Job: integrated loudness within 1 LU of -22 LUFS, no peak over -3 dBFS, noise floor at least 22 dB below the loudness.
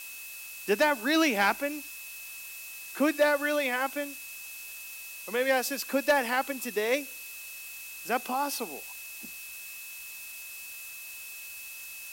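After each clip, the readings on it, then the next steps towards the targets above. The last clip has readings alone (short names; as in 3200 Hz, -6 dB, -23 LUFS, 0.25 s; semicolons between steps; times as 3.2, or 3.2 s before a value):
steady tone 2600 Hz; tone level -44 dBFS; noise floor -43 dBFS; noise floor target -53 dBFS; loudness -30.5 LUFS; peak -14.5 dBFS; loudness target -22.0 LUFS
-> notch 2600 Hz, Q 30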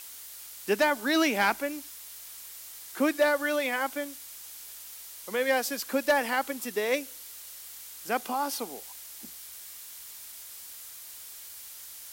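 steady tone none; noise floor -45 dBFS; noise floor target -51 dBFS
-> denoiser 6 dB, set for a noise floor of -45 dBFS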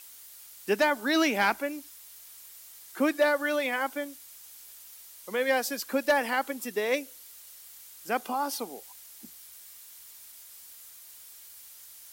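noise floor -50 dBFS; loudness -28.0 LUFS; peak -14.5 dBFS; loudness target -22.0 LUFS
-> gain +6 dB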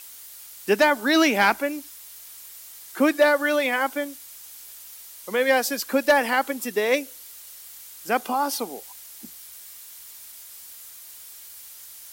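loudness -22.0 LUFS; peak -8.5 dBFS; noise floor -44 dBFS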